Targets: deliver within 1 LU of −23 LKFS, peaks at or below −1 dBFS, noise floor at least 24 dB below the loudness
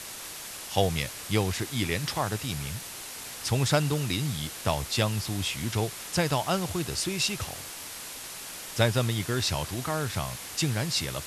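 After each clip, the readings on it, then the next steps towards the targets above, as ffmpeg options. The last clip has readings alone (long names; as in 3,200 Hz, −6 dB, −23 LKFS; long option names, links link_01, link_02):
background noise floor −41 dBFS; target noise floor −53 dBFS; integrated loudness −29.0 LKFS; sample peak −7.5 dBFS; target loudness −23.0 LKFS
→ -af "afftdn=noise_reduction=12:noise_floor=-41"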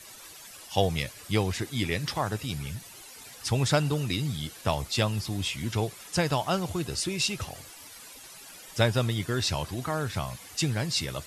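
background noise floor −48 dBFS; target noise floor −53 dBFS
→ -af "afftdn=noise_reduction=6:noise_floor=-48"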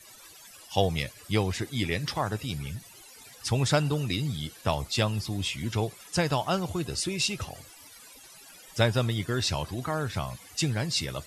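background noise floor −51 dBFS; target noise floor −53 dBFS
→ -af "afftdn=noise_reduction=6:noise_floor=-51"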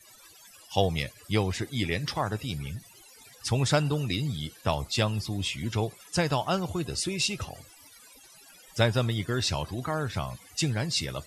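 background noise floor −54 dBFS; integrated loudness −29.0 LKFS; sample peak −7.5 dBFS; target loudness −23.0 LKFS
→ -af "volume=6dB"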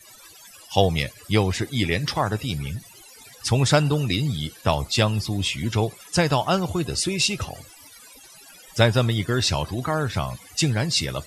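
integrated loudness −23.0 LKFS; sample peak −1.5 dBFS; background noise floor −48 dBFS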